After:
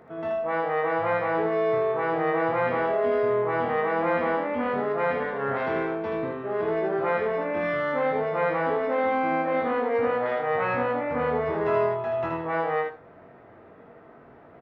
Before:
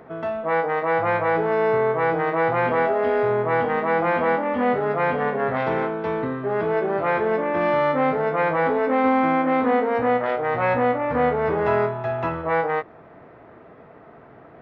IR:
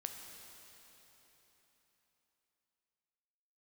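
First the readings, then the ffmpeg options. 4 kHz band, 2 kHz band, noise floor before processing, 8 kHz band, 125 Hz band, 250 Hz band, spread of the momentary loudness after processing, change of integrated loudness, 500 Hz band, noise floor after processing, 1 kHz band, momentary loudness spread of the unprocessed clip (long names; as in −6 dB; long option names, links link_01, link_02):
−3.5 dB, −4.0 dB, −47 dBFS, can't be measured, −6.5 dB, −5.5 dB, 4 LU, −4.0 dB, −3.5 dB, −50 dBFS, −5.0 dB, 5 LU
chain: -filter_complex "[0:a]aecho=1:1:21|79:0.501|0.668[link_01];[1:a]atrim=start_sample=2205,atrim=end_sample=4410[link_02];[link_01][link_02]afir=irnorm=-1:irlink=0,volume=-3dB"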